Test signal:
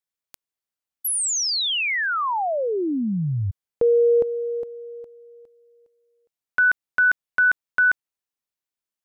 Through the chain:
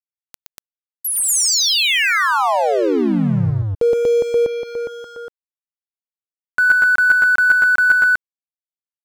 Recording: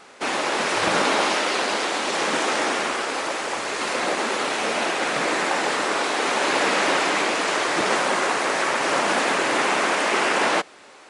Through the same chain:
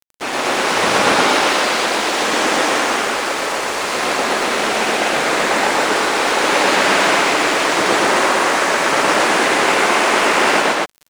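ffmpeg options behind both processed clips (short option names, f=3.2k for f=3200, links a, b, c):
-af "aeval=exprs='sgn(val(0))*max(abs(val(0))-0.0133,0)':c=same,acompressor=mode=upward:threshold=-21dB:ratio=2.5:attack=0.21:release=91:knee=2.83:detection=peak,aecho=1:1:119.5|239.1:0.891|1,volume=3.5dB"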